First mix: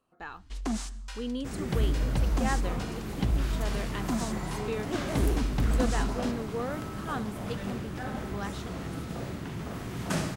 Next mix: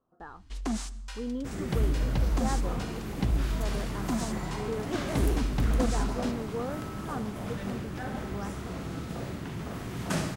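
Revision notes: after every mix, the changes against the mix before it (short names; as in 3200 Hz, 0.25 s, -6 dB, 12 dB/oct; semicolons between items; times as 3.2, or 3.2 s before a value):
speech: add running mean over 18 samples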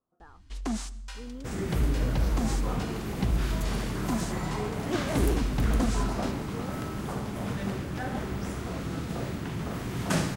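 speech -8.5 dB; second sound +4.5 dB; reverb: off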